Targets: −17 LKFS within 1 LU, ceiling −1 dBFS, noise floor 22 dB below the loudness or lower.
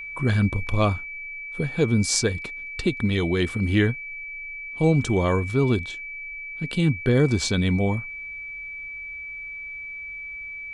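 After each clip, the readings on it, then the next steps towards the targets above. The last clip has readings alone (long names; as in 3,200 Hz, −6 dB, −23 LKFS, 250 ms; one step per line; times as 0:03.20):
interfering tone 2,300 Hz; level of the tone −33 dBFS; integrated loudness −25.0 LKFS; sample peak −4.0 dBFS; target loudness −17.0 LKFS
→ notch filter 2,300 Hz, Q 30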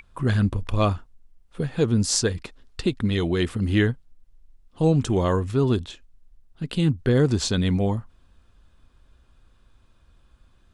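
interfering tone none found; integrated loudness −23.5 LKFS; sample peak −4.5 dBFS; target loudness −17.0 LKFS
→ level +6.5 dB
brickwall limiter −1 dBFS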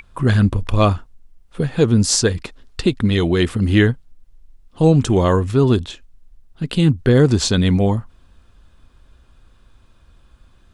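integrated loudness −17.0 LKFS; sample peak −1.0 dBFS; background noise floor −53 dBFS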